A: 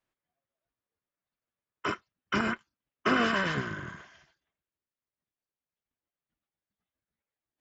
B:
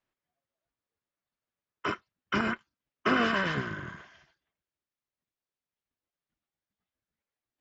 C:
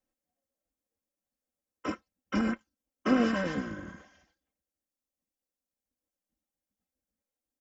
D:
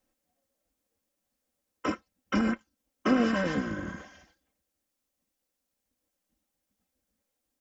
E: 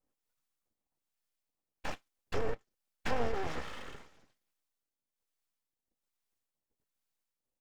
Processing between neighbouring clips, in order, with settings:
LPF 5800 Hz 12 dB/oct
band shelf 2000 Hz -9.5 dB 2.6 oct; comb 3.8 ms, depth 79%
compressor 1.5:1, threshold -43 dBFS, peak gain reduction 8.5 dB; gain +8.5 dB
harmonic tremolo 1.2 Hz, depth 70%, crossover 610 Hz; full-wave rectifier; gain -2 dB

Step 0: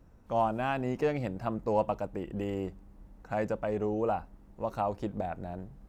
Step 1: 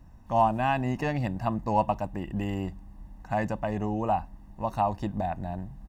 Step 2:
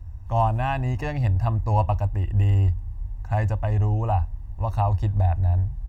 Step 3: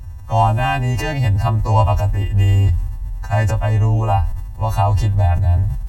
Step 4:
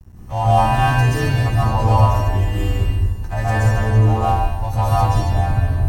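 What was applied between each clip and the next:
comb 1.1 ms, depth 68%; gain +3 dB
resonant low shelf 130 Hz +12.5 dB, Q 3
frequency quantiser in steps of 2 st; sustainer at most 46 dB/s; gain +6.5 dB
crossover distortion -34 dBFS; plate-style reverb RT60 1.1 s, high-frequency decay 1×, pre-delay 0.115 s, DRR -9 dB; gain -6.5 dB

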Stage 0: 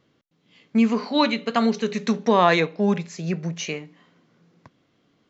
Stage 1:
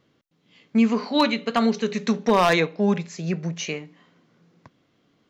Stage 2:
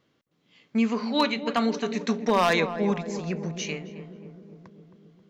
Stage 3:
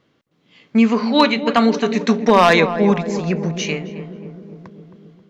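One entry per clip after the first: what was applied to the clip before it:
wavefolder -9 dBFS
low shelf 410 Hz -3.5 dB; darkening echo 0.267 s, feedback 71%, low-pass 900 Hz, level -9 dB; gain -2.5 dB
AGC gain up to 3 dB; high shelf 6900 Hz -8.5 dB; gain +7 dB

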